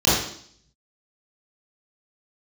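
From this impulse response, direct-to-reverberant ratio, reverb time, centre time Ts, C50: -10.0 dB, 0.60 s, 63 ms, 0.0 dB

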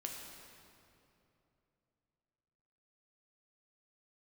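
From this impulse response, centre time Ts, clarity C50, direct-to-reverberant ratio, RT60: 92 ms, 2.0 dB, 0.0 dB, 2.9 s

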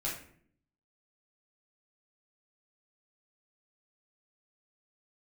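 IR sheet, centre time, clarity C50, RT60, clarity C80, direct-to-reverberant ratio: 36 ms, 5.0 dB, 0.60 s, 9.5 dB, -6.5 dB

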